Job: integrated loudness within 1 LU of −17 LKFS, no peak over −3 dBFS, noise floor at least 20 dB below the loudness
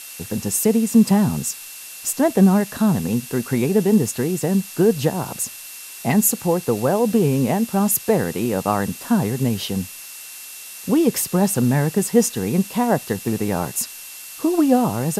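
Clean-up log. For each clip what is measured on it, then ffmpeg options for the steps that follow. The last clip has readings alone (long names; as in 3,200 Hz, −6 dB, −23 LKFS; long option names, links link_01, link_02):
interfering tone 2,700 Hz; level of the tone −45 dBFS; background noise floor −37 dBFS; target noise floor −40 dBFS; integrated loudness −19.5 LKFS; sample peak −4.0 dBFS; target loudness −17.0 LKFS
→ -af "bandreject=frequency=2700:width=30"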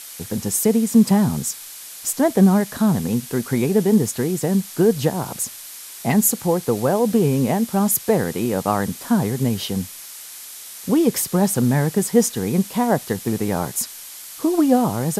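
interfering tone none found; background noise floor −37 dBFS; target noise floor −40 dBFS
→ -af "afftdn=noise_reduction=6:noise_floor=-37"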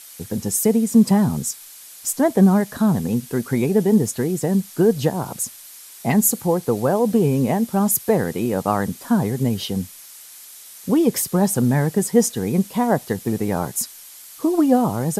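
background noise floor −42 dBFS; integrated loudness −20.0 LKFS; sample peak −4.5 dBFS; target loudness −17.0 LKFS
→ -af "volume=3dB,alimiter=limit=-3dB:level=0:latency=1"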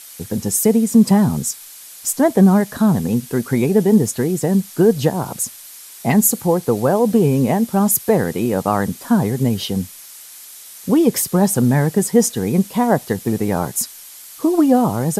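integrated loudness −17.0 LKFS; sample peak −3.0 dBFS; background noise floor −39 dBFS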